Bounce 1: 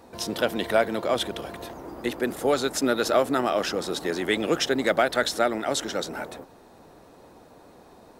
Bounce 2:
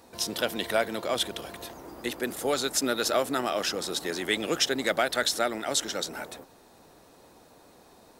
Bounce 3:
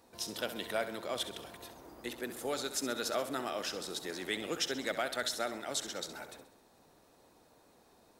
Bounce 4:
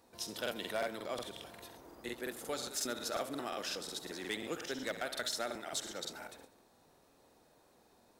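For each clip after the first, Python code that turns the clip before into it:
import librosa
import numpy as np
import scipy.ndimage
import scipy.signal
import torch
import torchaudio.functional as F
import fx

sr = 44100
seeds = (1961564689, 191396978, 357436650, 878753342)

y1 = fx.high_shelf(x, sr, hz=2400.0, db=9.5)
y1 = y1 * 10.0 ** (-5.5 / 20.0)
y2 = fx.echo_feedback(y1, sr, ms=66, feedback_pct=52, wet_db=-12)
y2 = y2 * 10.0 ** (-9.0 / 20.0)
y3 = 10.0 ** (-24.5 / 20.0) * (np.abs((y2 / 10.0 ** (-24.5 / 20.0) + 3.0) % 4.0 - 2.0) - 1.0)
y3 = fx.buffer_crackle(y3, sr, first_s=0.42, period_s=0.18, block=2048, kind='repeat')
y3 = y3 * 10.0 ** (-2.5 / 20.0)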